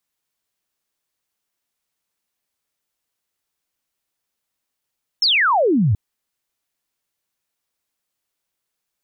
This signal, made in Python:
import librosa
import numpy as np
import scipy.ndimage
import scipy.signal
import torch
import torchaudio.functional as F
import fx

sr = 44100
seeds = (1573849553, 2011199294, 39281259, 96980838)

y = fx.laser_zap(sr, level_db=-13.0, start_hz=5500.0, end_hz=90.0, length_s=0.73, wave='sine')